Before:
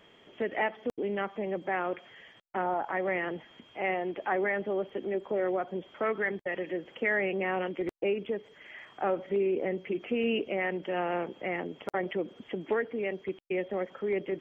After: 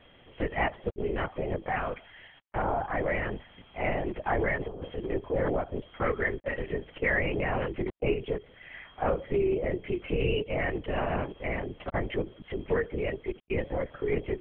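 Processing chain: 1.64–2.56 s: high-pass 480 Hz; 4.56–5.11 s: compressor with a negative ratio -35 dBFS, ratio -0.5; LPC vocoder at 8 kHz whisper; trim +1.5 dB

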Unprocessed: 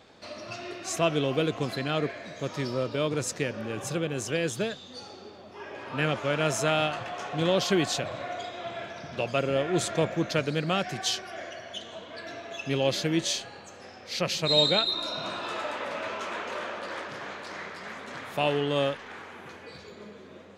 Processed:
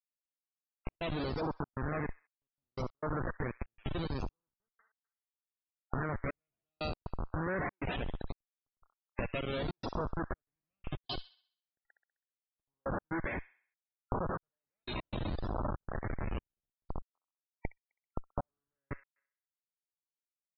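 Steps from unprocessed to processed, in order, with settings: Schmitt trigger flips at -27 dBFS; treble shelf 12 kHz +10.5 dB; compression 10:1, threshold -42 dBFS, peak gain reduction 16 dB; LFO low-pass saw up 0.71 Hz 940–5400 Hz; loudest bins only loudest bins 64; feedback echo behind a high-pass 65 ms, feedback 44%, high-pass 1.9 kHz, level -13.5 dB; trance gate "xx....x.xxxxx.xx" 119 bpm -60 dB; trim +9 dB

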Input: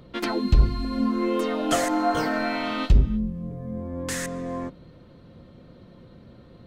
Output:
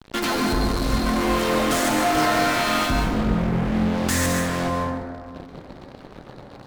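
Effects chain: dynamic bell 360 Hz, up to -6 dB, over -37 dBFS, Q 1.1; fuzz box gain 41 dB, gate -43 dBFS; plate-style reverb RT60 1.8 s, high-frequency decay 0.35×, pre-delay 120 ms, DRR 0.5 dB; trim -8.5 dB

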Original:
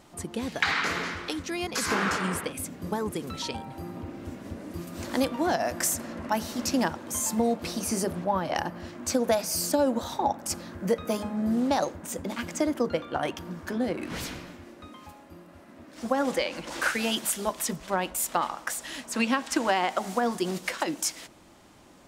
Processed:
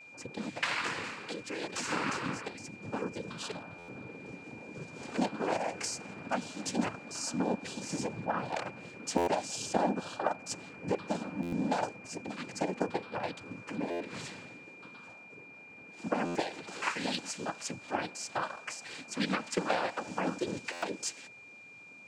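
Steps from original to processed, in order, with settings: noise-vocoded speech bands 8; Chebyshev shaper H 3 -19 dB, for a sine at -9.5 dBFS; whistle 2.4 kHz -47 dBFS; buffer glitch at 3.78/9.17/11.42/13.90/16.25/20.72 s, samples 512, times 8; trim -3 dB

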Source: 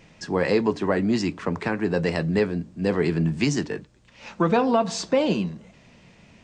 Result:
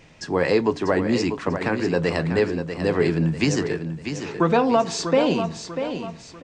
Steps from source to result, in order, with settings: peaking EQ 200 Hz -8.5 dB 0.22 oct; on a send: feedback delay 643 ms, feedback 39%, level -8.5 dB; on the sum: trim +2 dB

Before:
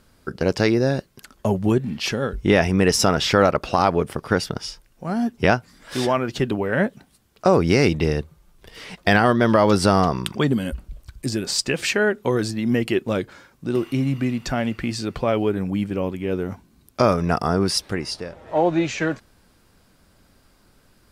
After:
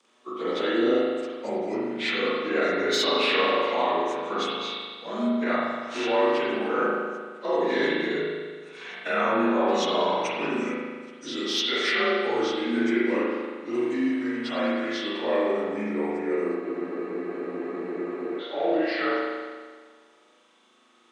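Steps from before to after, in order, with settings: frequency axis rescaled in octaves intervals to 89%; treble shelf 5.3 kHz -10.5 dB; peak limiter -15.5 dBFS, peak gain reduction 9 dB; high-pass 280 Hz 24 dB/octave; treble shelf 2.6 kHz +10.5 dB; saturation -9.5 dBFS, distortion -30 dB; spring tank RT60 1.6 s, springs 38 ms, chirp 65 ms, DRR -7 dB; spectral freeze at 16.62 s, 1.79 s; trim -6 dB

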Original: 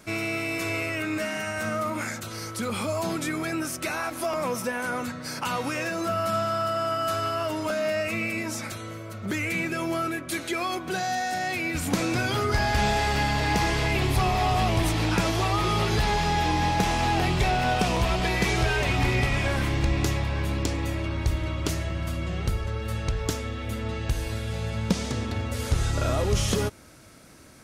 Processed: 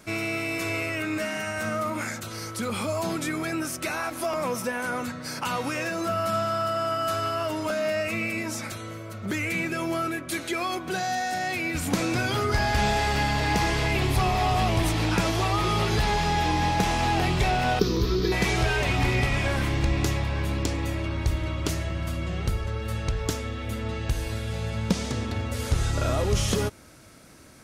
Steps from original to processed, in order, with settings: 17.79–18.32 s: FFT filter 230 Hz 0 dB, 410 Hz +11 dB, 680 Hz -22 dB, 1.2 kHz -4 dB, 2.8 kHz -13 dB, 4 kHz +3 dB, 5.9 kHz +1 dB, 8.7 kHz -24 dB, 13 kHz +4 dB

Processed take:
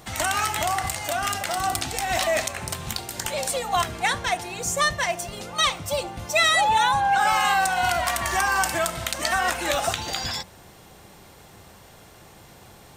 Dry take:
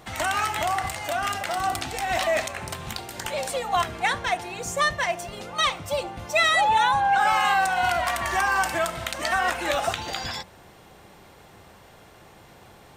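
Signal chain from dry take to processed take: tone controls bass +3 dB, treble +7 dB

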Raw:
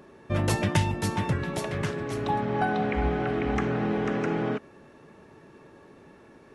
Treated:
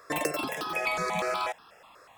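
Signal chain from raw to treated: wide varispeed 3.01×; stepped phaser 8.2 Hz 820–2100 Hz

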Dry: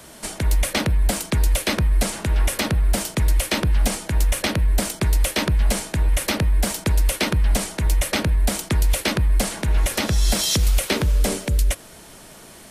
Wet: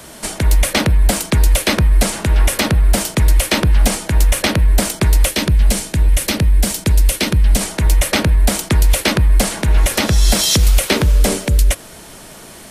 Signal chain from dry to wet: 5.29–7.61 s: peaking EQ 1 kHz -6.5 dB 2.4 oct; trim +6.5 dB

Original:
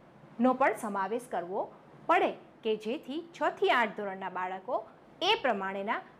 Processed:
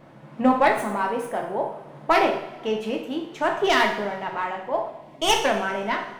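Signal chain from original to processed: tracing distortion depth 0.088 ms; spectral selection erased 4.88–5.22 s, 430–1900 Hz; two-slope reverb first 0.62 s, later 2 s, from -16 dB, DRR 1.5 dB; trim +5.5 dB

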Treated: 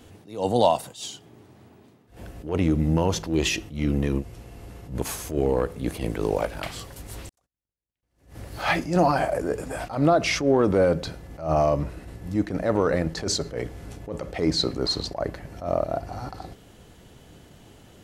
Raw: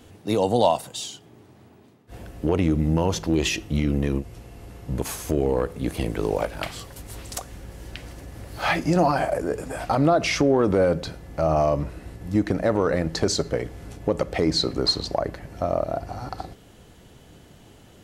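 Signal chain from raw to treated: 7.29–8.03 s: gate -31 dBFS, range -57 dB; attacks held to a fixed rise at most 140 dB/s

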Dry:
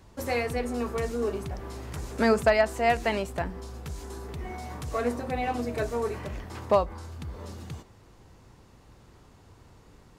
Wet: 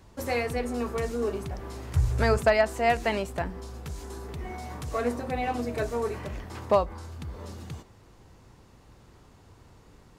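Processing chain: 1.95–2.38 s: resonant low shelf 160 Hz +11 dB, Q 3

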